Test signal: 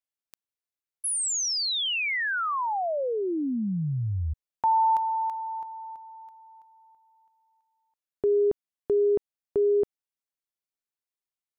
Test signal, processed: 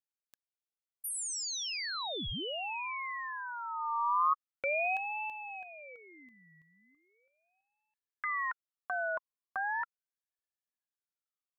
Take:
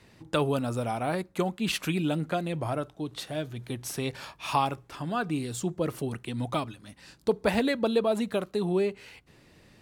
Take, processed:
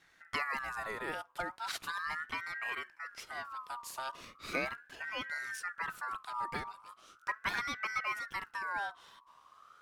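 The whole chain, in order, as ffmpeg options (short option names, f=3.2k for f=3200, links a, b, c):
-af "asubboost=boost=7:cutoff=92,aeval=exprs='val(0)*sin(2*PI*1400*n/s+1400*0.25/0.38*sin(2*PI*0.38*n/s))':c=same,volume=-6.5dB"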